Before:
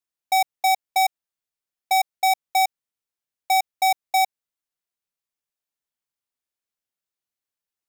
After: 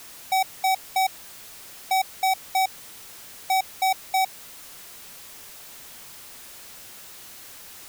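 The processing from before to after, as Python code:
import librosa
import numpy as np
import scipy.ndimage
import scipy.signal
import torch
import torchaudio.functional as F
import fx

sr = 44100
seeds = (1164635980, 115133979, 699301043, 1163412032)

y = x + 0.5 * 10.0 ** (-31.5 / 20.0) * np.sign(x)
y = y * 10.0 ** (-4.0 / 20.0)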